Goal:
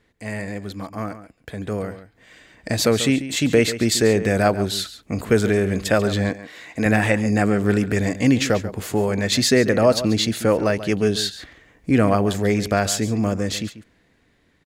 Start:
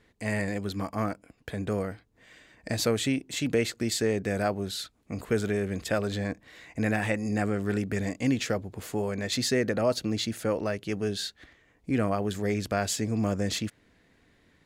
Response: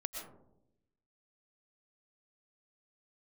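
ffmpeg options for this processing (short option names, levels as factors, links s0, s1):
-filter_complex "[0:a]asplit=2[s0][s1];[s1]adelay=139.9,volume=0.224,highshelf=f=4000:g=-3.15[s2];[s0][s2]amix=inputs=2:normalize=0,dynaudnorm=f=710:g=7:m=3.76,asettb=1/sr,asplit=3[s3][s4][s5];[s3]atrim=end=6.294[s6];[s4]atrim=start=6.29:end=6.86,asetpts=PTS-STARTPTS,afade=t=in:d=0.004:c=qsin,afade=t=out:st=0.566:d=0.004:c=qsin,highpass=f=230:p=1[s7];[s5]atrim=start=6.856[s8];[s6][s7]acrossfade=d=0.004:c1=hsin:c2=qsin[s9];[s9][s8]acrossfade=d=0.004:c1=qsin:c2=hsin"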